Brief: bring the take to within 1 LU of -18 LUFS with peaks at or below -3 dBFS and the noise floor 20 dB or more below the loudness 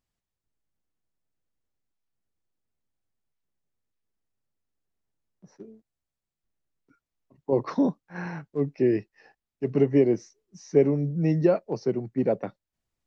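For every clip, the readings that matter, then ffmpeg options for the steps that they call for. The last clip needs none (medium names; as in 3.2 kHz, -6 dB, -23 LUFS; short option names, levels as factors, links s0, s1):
loudness -25.5 LUFS; peak level -7.5 dBFS; loudness target -18.0 LUFS
-> -af "volume=2.37,alimiter=limit=0.708:level=0:latency=1"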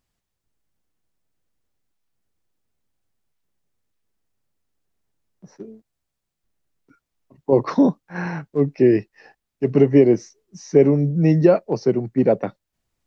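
loudness -18.5 LUFS; peak level -3.0 dBFS; noise floor -81 dBFS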